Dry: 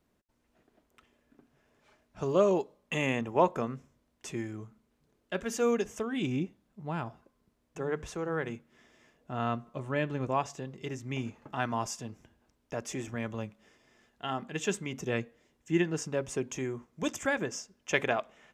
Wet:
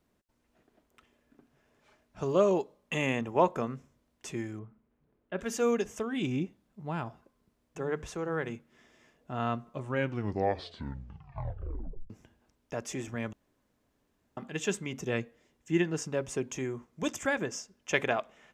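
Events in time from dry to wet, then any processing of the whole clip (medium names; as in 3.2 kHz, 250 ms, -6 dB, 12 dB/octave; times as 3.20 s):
4.59–5.39 s: distance through air 490 m
9.81 s: tape stop 2.29 s
13.33–14.37 s: room tone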